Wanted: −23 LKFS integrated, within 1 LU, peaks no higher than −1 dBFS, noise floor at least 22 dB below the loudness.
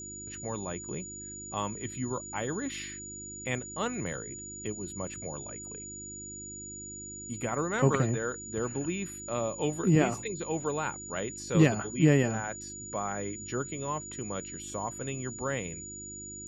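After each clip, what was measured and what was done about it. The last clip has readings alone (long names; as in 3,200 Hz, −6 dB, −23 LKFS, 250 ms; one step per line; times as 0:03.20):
mains hum 50 Hz; hum harmonics up to 350 Hz; level of the hum −48 dBFS; interfering tone 6,900 Hz; level of the tone −41 dBFS; integrated loudness −32.5 LKFS; sample peak −9.0 dBFS; target loudness −23.0 LKFS
→ hum removal 50 Hz, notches 7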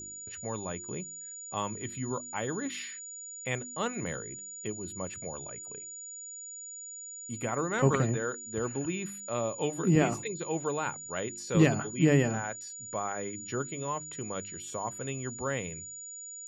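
mains hum none found; interfering tone 6,900 Hz; level of the tone −41 dBFS
→ notch filter 6,900 Hz, Q 30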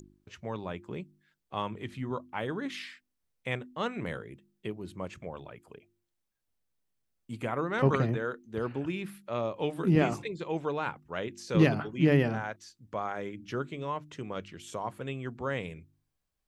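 interfering tone none found; integrated loudness −32.5 LKFS; sample peak −9.0 dBFS; target loudness −23.0 LKFS
→ level +9.5 dB
brickwall limiter −1 dBFS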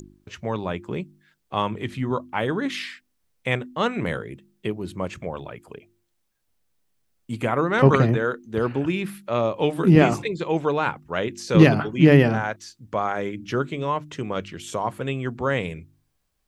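integrated loudness −23.0 LKFS; sample peak −1.0 dBFS; background noise floor −72 dBFS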